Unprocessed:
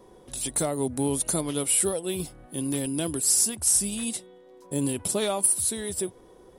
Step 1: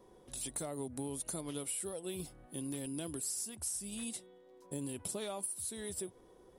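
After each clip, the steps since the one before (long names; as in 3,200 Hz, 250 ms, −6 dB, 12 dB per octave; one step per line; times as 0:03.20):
downward compressor, threshold −28 dBFS, peak gain reduction 10.5 dB
level −8.5 dB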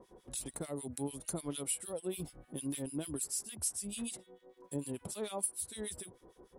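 two-band tremolo in antiphase 6.7 Hz, depth 100%, crossover 1,500 Hz
level +5.5 dB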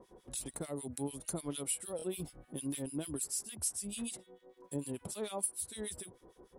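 buffer that repeats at 0:01.97, samples 1,024, times 2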